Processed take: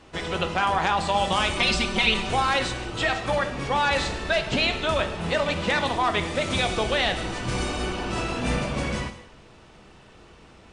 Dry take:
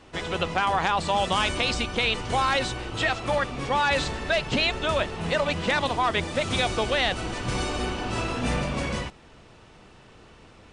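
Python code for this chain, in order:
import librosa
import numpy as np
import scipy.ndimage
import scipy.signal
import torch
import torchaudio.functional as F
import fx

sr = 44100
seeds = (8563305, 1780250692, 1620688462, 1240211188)

y = fx.comb(x, sr, ms=5.2, depth=0.98, at=(1.59, 2.3))
y = fx.rev_gated(y, sr, seeds[0], gate_ms=290, shape='falling', drr_db=7.0)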